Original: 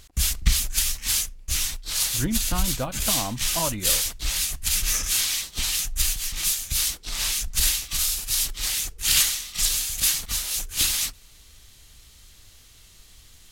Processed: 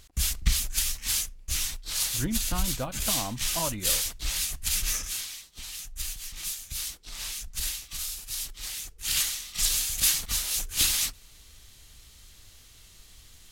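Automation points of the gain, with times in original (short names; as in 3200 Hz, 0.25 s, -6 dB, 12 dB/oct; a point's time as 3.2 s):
4.88 s -4 dB
5.43 s -16.5 dB
6.15 s -10 dB
8.87 s -10 dB
9.79 s -1.5 dB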